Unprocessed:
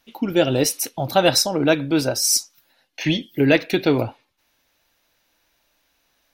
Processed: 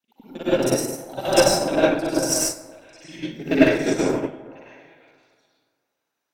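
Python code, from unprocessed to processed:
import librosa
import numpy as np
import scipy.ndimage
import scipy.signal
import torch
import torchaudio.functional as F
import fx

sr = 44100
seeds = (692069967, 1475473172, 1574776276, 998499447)

p1 = fx.local_reverse(x, sr, ms=39.0)
p2 = scipy.signal.sosfilt(scipy.signal.butter(2, 150.0, 'highpass', fs=sr, output='sos'), p1)
p3 = fx.peak_eq(p2, sr, hz=7900.0, db=7.0, octaves=0.52)
p4 = fx.cheby_harmonics(p3, sr, harmonics=(2, 6, 8), levels_db=(-24, -24, -32), full_scale_db=-2.5)
p5 = p4 + fx.echo_stepped(p4, sr, ms=521, hz=830.0, octaves=1.4, feedback_pct=70, wet_db=-7.5, dry=0)
p6 = fx.rev_plate(p5, sr, seeds[0], rt60_s=2.0, hf_ratio=0.3, predelay_ms=85, drr_db=-10.0)
p7 = fx.upward_expand(p6, sr, threshold_db=-15.0, expansion=2.5)
y = F.gain(torch.from_numpy(p7), -5.0).numpy()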